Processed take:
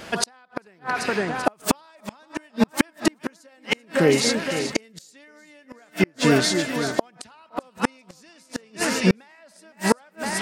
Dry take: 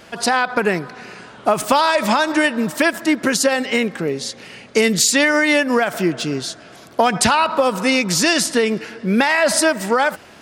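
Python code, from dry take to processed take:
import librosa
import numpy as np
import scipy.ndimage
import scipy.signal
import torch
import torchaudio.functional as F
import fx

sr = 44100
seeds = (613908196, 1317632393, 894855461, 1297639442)

y = fx.echo_split(x, sr, split_hz=2100.0, low_ms=512, high_ms=387, feedback_pct=52, wet_db=-11.0)
y = fx.gate_flip(y, sr, shuts_db=-9.0, range_db=-39)
y = y * librosa.db_to_amplitude(4.0)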